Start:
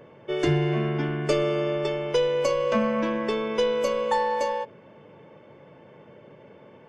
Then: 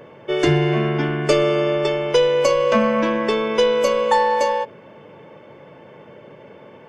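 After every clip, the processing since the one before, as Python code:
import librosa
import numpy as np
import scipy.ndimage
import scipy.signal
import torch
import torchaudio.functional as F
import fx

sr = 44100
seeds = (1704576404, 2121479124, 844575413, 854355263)

y = fx.low_shelf(x, sr, hz=320.0, db=-4.0)
y = y * 10.0 ** (8.0 / 20.0)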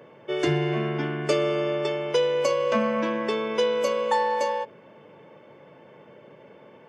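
y = scipy.signal.sosfilt(scipy.signal.butter(2, 110.0, 'highpass', fs=sr, output='sos'), x)
y = y * 10.0 ** (-6.5 / 20.0)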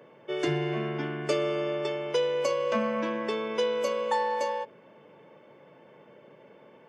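y = scipy.signal.sosfilt(scipy.signal.butter(2, 120.0, 'highpass', fs=sr, output='sos'), x)
y = y * 10.0 ** (-4.0 / 20.0)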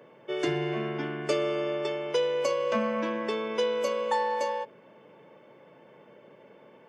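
y = fx.hum_notches(x, sr, base_hz=50, count=3)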